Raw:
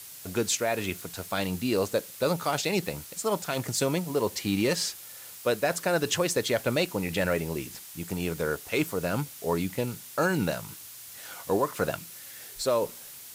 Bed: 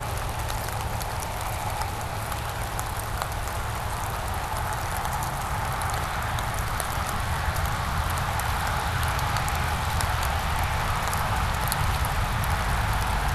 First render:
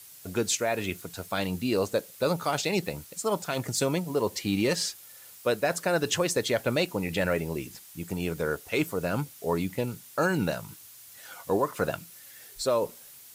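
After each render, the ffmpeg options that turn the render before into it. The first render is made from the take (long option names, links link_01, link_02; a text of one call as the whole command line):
ffmpeg -i in.wav -af "afftdn=noise_reduction=6:noise_floor=-45" out.wav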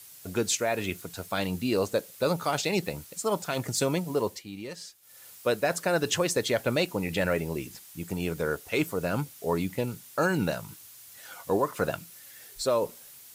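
ffmpeg -i in.wav -filter_complex "[0:a]asplit=3[link_01][link_02][link_03];[link_01]atrim=end=4.43,asetpts=PTS-STARTPTS,afade=type=out:start_time=4.13:duration=0.3:curve=qsin:silence=0.211349[link_04];[link_02]atrim=start=4.43:end=5.01,asetpts=PTS-STARTPTS,volume=-13.5dB[link_05];[link_03]atrim=start=5.01,asetpts=PTS-STARTPTS,afade=type=in:duration=0.3:curve=qsin:silence=0.211349[link_06];[link_04][link_05][link_06]concat=n=3:v=0:a=1" out.wav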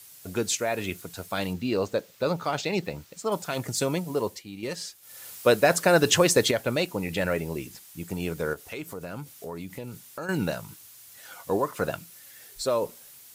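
ffmpeg -i in.wav -filter_complex "[0:a]asettb=1/sr,asplit=3[link_01][link_02][link_03];[link_01]atrim=end=1.534[link_04];[link_02]atrim=start=1.53:end=3.32,asetpts=PTS-STARTPTS,afade=type=in:duration=0.004:curve=qsin,afade=type=out:start_time=1.786:duration=0.004:curve=qsin,equalizer=frequency=11000:width_type=o:width=1:gain=-13[link_05];[link_03]atrim=start=3.316[link_06];[link_04][link_05]acrossfade=duration=0.004:curve1=hsin:curve2=qsin[link_07];[link_07][link_06]acrossfade=duration=0.004:curve1=qsin:curve2=hsin,asettb=1/sr,asplit=3[link_08][link_09][link_10];[link_08]atrim=end=8.534[link_11];[link_09]atrim=start=8.53:end=10.29,asetpts=PTS-STARTPTS,afade=type=in:duration=0.004:curve=qsin,afade=type=out:start_time=1.756:duration=0.004:curve=qsin,acompressor=threshold=-35dB:ratio=3:attack=3.2:release=140:knee=1:detection=peak[link_12];[link_10]atrim=start=10.286[link_13];[link_11][link_12]acrossfade=duration=0.004:curve1=hsin:curve2=qsin[link_14];[link_14][link_13]acrossfade=duration=0.004:curve1=qsin:curve2=hsin,asplit=3[link_15][link_16][link_17];[link_15]atrim=end=4.632[link_18];[link_16]atrim=start=4.628:end=6.512,asetpts=PTS-STARTPTS,volume=6.5dB[link_19];[link_17]atrim=start=6.508[link_20];[link_18][link_19]acrossfade=duration=0.004:curve1=hsin:curve2=hsin[link_21];[link_21][link_20]acrossfade=duration=0.004:curve1=hsin:curve2=hsin" out.wav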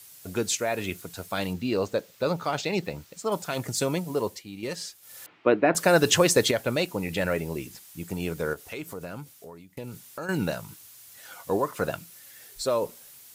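ffmpeg -i in.wav -filter_complex "[0:a]asettb=1/sr,asplit=3[link_01][link_02][link_03];[link_01]atrim=end=5.264[link_04];[link_02]atrim=start=5.26:end=5.75,asetpts=PTS-STARTPTS,afade=type=in:duration=0.004:curve=qsin,afade=type=out:start_time=0.486:duration=0.004:curve=qsin,highpass=170,equalizer=frequency=310:width_type=q:width=4:gain=10,equalizer=frequency=530:width_type=q:width=4:gain=-5,equalizer=frequency=1600:width_type=q:width=4:gain=-4,lowpass=frequency=2500:width=0.5412,lowpass=frequency=2500:width=1.3066[link_05];[link_03]atrim=start=5.746[link_06];[link_04][link_05]acrossfade=duration=0.004:curve1=hsin:curve2=qsin[link_07];[link_07][link_06]acrossfade=duration=0.004:curve1=qsin:curve2=hsin,asplit=2[link_08][link_09];[link_08]atrim=end=9.77,asetpts=PTS-STARTPTS,afade=type=out:start_time=9.05:duration=0.72:silence=0.0841395[link_10];[link_09]atrim=start=9.77,asetpts=PTS-STARTPTS,afade=type=in:duration=0.004:curve=hsin:silence=0.0841395[link_11];[link_10][link_11]concat=n=2:v=0:a=1" out.wav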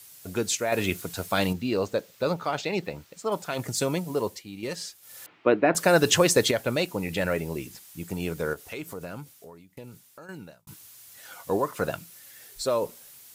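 ffmpeg -i in.wav -filter_complex "[0:a]asettb=1/sr,asplit=3[link_01][link_02][link_03];[link_01]atrim=end=0.724[link_04];[link_02]atrim=start=0.72:end=1.53,asetpts=PTS-STARTPTS,afade=type=in:duration=0.004:curve=qsin,afade=type=out:start_time=0.806:duration=0.004:curve=qsin,acontrast=24[link_05];[link_03]atrim=start=1.526[link_06];[link_04][link_05]acrossfade=duration=0.004:curve1=hsin:curve2=qsin[link_07];[link_07][link_06]acrossfade=duration=0.004:curve1=qsin:curve2=hsin,asettb=1/sr,asplit=3[link_08][link_09][link_10];[link_08]atrim=end=2.344[link_11];[link_09]atrim=start=2.34:end=3.59,asetpts=PTS-STARTPTS,afade=type=in:duration=0.004:curve=qsin,afade=type=out:start_time=1.246:duration=0.004:curve=qsin,bass=frequency=250:gain=-3,treble=frequency=4000:gain=-4[link_12];[link_10]atrim=start=3.586[link_13];[link_11][link_12]acrossfade=duration=0.004:curve1=hsin:curve2=qsin[link_14];[link_14][link_13]acrossfade=duration=0.004:curve1=qsin:curve2=hsin,asplit=2[link_15][link_16];[link_15]atrim=end=10.67,asetpts=PTS-STARTPTS,afade=type=out:start_time=9.14:duration=1.53[link_17];[link_16]atrim=start=10.67,asetpts=PTS-STARTPTS,afade=type=in:duration=0.004:curve=hsin[link_18];[link_17][link_18]concat=n=2:v=0:a=1" out.wav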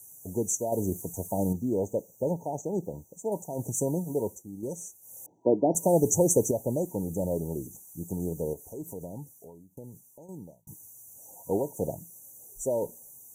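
ffmpeg -i in.wav -af "equalizer=frequency=960:width=0.74:gain=-4.5,afftfilt=real='re*(1-between(b*sr/4096,960,5800))':imag='im*(1-between(b*sr/4096,960,5800))':win_size=4096:overlap=0.75" out.wav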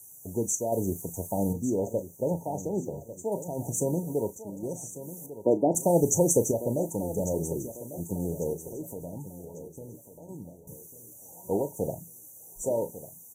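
ffmpeg -i in.wav -filter_complex "[0:a]asplit=2[link_01][link_02];[link_02]adelay=35,volume=-12dB[link_03];[link_01][link_03]amix=inputs=2:normalize=0,aecho=1:1:1147|2294|3441|4588:0.211|0.0782|0.0289|0.0107" out.wav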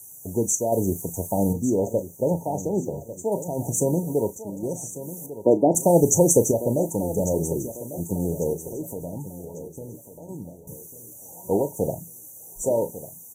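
ffmpeg -i in.wav -af "volume=5.5dB" out.wav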